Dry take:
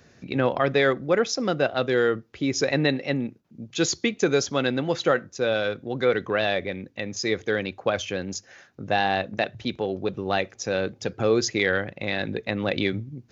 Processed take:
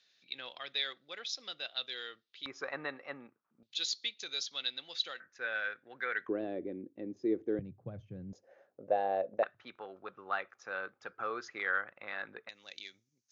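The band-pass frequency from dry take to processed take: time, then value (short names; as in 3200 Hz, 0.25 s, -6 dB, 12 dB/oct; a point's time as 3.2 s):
band-pass, Q 4.1
3700 Hz
from 2.46 s 1200 Hz
from 3.63 s 3900 Hz
from 5.2 s 1700 Hz
from 6.29 s 320 Hz
from 7.59 s 130 Hz
from 8.33 s 550 Hz
from 9.43 s 1300 Hz
from 12.49 s 6200 Hz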